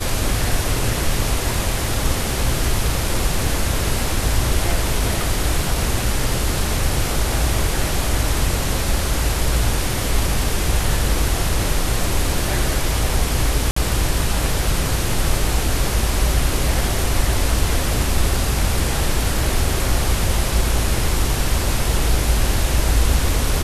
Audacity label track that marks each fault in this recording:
13.710000	13.760000	gap 54 ms

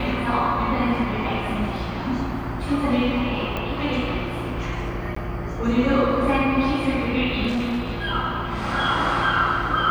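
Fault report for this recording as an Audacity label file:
3.570000	3.570000	pop -15 dBFS
5.150000	5.160000	gap 14 ms
7.470000	8.020000	clipped -20.5 dBFS

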